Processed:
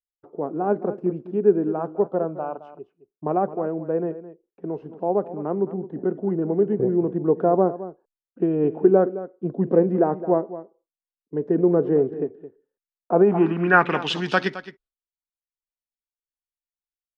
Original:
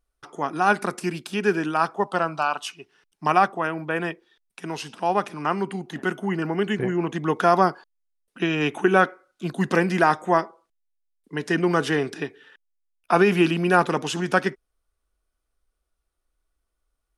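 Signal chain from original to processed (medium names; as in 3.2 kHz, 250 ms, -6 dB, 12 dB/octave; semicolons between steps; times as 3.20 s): expander -42 dBFS; delay 216 ms -14.5 dB; low-pass sweep 490 Hz -> 4.1 kHz, 13.11–14.17 s; trim -1 dB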